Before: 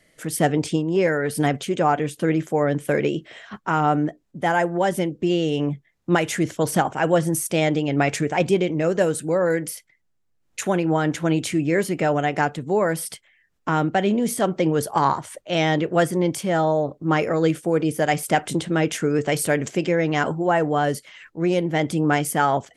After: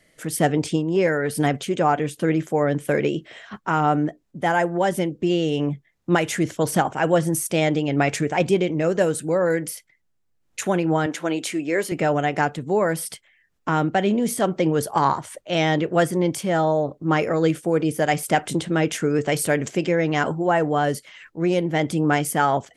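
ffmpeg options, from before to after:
-filter_complex "[0:a]asettb=1/sr,asplit=3[a][b][c];[a]atrim=end=11.064[d];[b]atrim=start=11.06:end=11.92,asetpts=PTS-STARTPTS,afade=t=in:d=0.004:c=qsin,afade=t=out:st=0.856:d=0.004:c=qsin,highpass=330[e];[c]atrim=start=11.916[f];[d][e]acrossfade=d=0.004:c1=hsin:c2=qsin[g];[g][f]acrossfade=d=0.004:c1=qsin:c2=hsin"

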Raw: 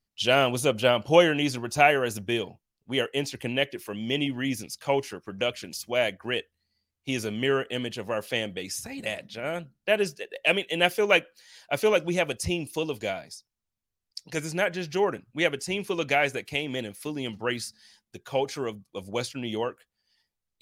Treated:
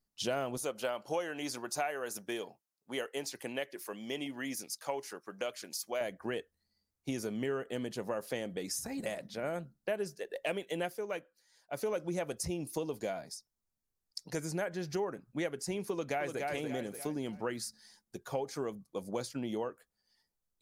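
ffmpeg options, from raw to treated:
-filter_complex "[0:a]asettb=1/sr,asplit=3[a][b][c];[a]atrim=end=0.574[d];[b]atrim=start=0.57:end=6.01,asetpts=PTS-STARTPTS,afade=t=in:d=0.004:c=qsin,afade=t=out:st=5.436:d=0.004:c=qsin,highpass=f=780:p=1[e];[c]atrim=start=6.006[f];[d][e]acrossfade=d=0.004:c1=hsin:c2=qsin[g];[g][f]acrossfade=d=0.004:c1=qsin:c2=hsin,asplit=2[h][i];[i]afade=t=in:st=15.91:d=0.01,afade=t=out:st=16.42:d=0.01,aecho=0:1:290|580|870|1160:0.473151|0.165603|0.057961|0.0202864[j];[h][j]amix=inputs=2:normalize=0,asplit=3[k][l][m];[k]atrim=end=11.04,asetpts=PTS-STARTPTS,afade=t=out:st=10.72:d=0.32:silence=0.237137[n];[l]atrim=start=11.04:end=11.69,asetpts=PTS-STARTPTS,volume=-12.5dB[o];[m]atrim=start=11.69,asetpts=PTS-STARTPTS,afade=t=in:d=0.32:silence=0.237137[p];[n][o][p]concat=n=3:v=0:a=1,equalizer=f=2.8k:t=o:w=1:g=-12,acompressor=threshold=-33dB:ratio=4,equalizer=f=97:t=o:w=0.33:g=-13.5"

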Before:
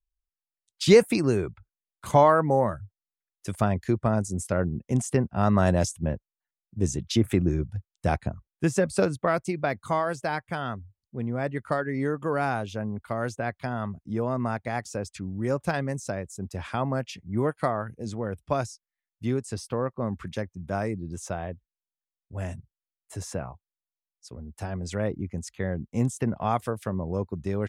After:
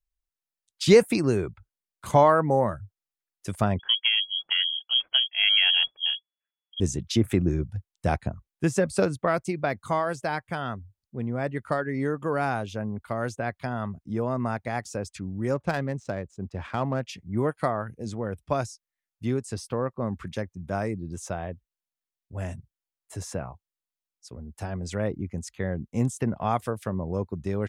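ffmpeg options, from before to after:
-filter_complex "[0:a]asettb=1/sr,asplit=3[a][b][c];[a]atrim=end=3.794[d];[b]atrim=start=3.79:end=6.8,asetpts=PTS-STARTPTS,afade=t=in:d=0.004:c=qsin,afade=t=out:st=3.006:d=0.004:c=qsin,lowpass=f=2.9k:t=q:w=0.5098,lowpass=f=2.9k:t=q:w=0.6013,lowpass=f=2.9k:t=q:w=0.9,lowpass=f=2.9k:t=q:w=2.563,afreqshift=-3400[e];[c]atrim=start=6.796[f];[d][e]acrossfade=d=0.004:c1=hsin:c2=qsin[g];[g][f]acrossfade=d=0.004:c1=qsin:c2=hsin,asettb=1/sr,asplit=3[h][i][j];[h]atrim=end=15.544[k];[i]atrim=start=15.54:end=17.07,asetpts=PTS-STARTPTS,afade=t=in:d=0.004:c=qsin,afade=t=out:st=1.526:d=0.004:c=qsin,adynamicsmooth=sensitivity=6.5:basefreq=2.5k[l];[j]atrim=start=17.066[m];[k][l]acrossfade=d=0.004:c1=hsin:c2=qsin[n];[n][m]acrossfade=d=0.004:c1=qsin:c2=hsin"

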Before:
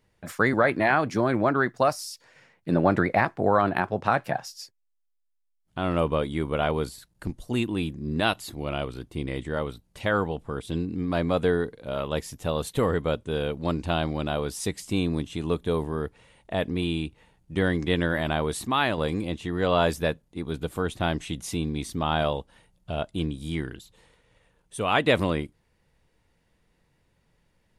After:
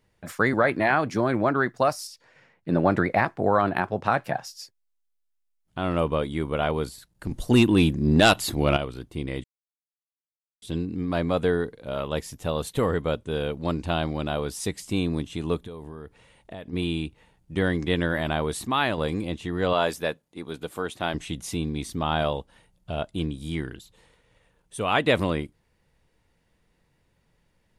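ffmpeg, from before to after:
-filter_complex "[0:a]asettb=1/sr,asplit=3[a][b][c];[a]atrim=end=2.074[d];[b]atrim=start=2.07:end=2.75,asetpts=PTS-STARTPTS,afade=t=in:d=0.004:c=qsin,afade=t=out:st=0.676:d=0.004:c=qsin,highshelf=f=5k:g=-10[e];[c]atrim=start=2.746[f];[d][e]acrossfade=d=0.004:c1=hsin:c2=qsin[g];[g][f]acrossfade=d=0.004:c1=qsin:c2=hsin,asettb=1/sr,asplit=3[h][i][j];[h]atrim=end=7.314[k];[i]atrim=start=7.31:end=8.77,asetpts=PTS-STARTPTS,afade=t=in:d=0.004:c=qsin,afade=t=out:st=1.456:d=0.004:c=qsin,aeval=exprs='0.355*sin(PI/2*2*val(0)/0.355)':c=same[l];[j]atrim=start=8.766[m];[k][l]acrossfade=d=0.004:c1=hsin:c2=qsin[n];[n][m]acrossfade=d=0.004:c1=qsin:c2=hsin,asplit=3[o][p][q];[o]afade=t=out:st=15.61:d=0.02[r];[p]acompressor=threshold=-35dB:ratio=6:attack=3.2:release=140:knee=1:detection=peak,afade=t=in:st=15.61:d=0.02,afade=t=out:st=16.72:d=0.02[s];[q]afade=t=in:st=16.72:d=0.02[t];[r][s][t]amix=inputs=3:normalize=0,asettb=1/sr,asplit=3[u][v][w];[u]atrim=end=19.734[x];[v]atrim=start=19.73:end=21.14,asetpts=PTS-STARTPTS,afade=t=in:d=0.004:c=qsin,afade=t=out:st=1.406:d=0.004:c=qsin,highpass=f=340:p=1[y];[w]atrim=start=21.136[z];[x][y]acrossfade=d=0.004:c1=hsin:c2=qsin[aa];[aa][z]acrossfade=d=0.004:c1=qsin:c2=hsin,asplit=3[ab][ac][ad];[ab]atrim=end=9.44,asetpts=PTS-STARTPTS,afade=t=out:st=9.436:d=0.004:c=hsin[ae];[ac]atrim=start=9.44:end=10.62,asetpts=PTS-STARTPTS,volume=0[af];[ad]atrim=start=10.62,asetpts=PTS-STARTPTS,afade=t=in:d=0.004:c=hsin[ag];[ae][af][ag]concat=n=3:v=0:a=1"

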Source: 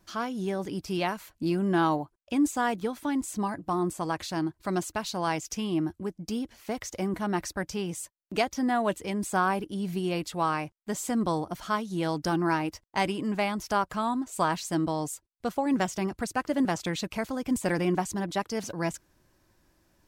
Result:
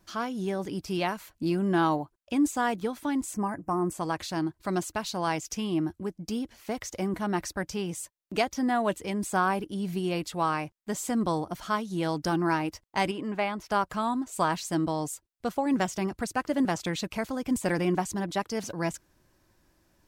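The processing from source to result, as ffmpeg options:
-filter_complex "[0:a]asettb=1/sr,asplit=3[a][b][c];[a]atrim=end=3.344[d];[b]atrim=start=3.34:end=3.92,asetpts=PTS-STARTPTS,afade=t=in:d=0.004:c=qsin,afade=t=out:st=0.576:d=0.004:c=qsin,asuperstop=centerf=3700:order=4:qfactor=1.1[e];[c]atrim=start=3.916[f];[d][e]acrossfade=d=0.004:c1=hsin:c2=qsin[g];[g][f]acrossfade=d=0.004:c1=qsin:c2=hsin,asettb=1/sr,asplit=3[h][i][j];[h]atrim=end=13.114[k];[i]atrim=start=13.11:end=13.72,asetpts=PTS-STARTPTS,afade=t=in:d=0.004:c=qsin,afade=t=out:st=0.606:d=0.004:c=qsin,bass=f=250:g=-6,treble=f=4k:g=-10[l];[j]atrim=start=13.716[m];[k][l]acrossfade=d=0.004:c1=hsin:c2=qsin[n];[n][m]acrossfade=d=0.004:c1=qsin:c2=hsin"

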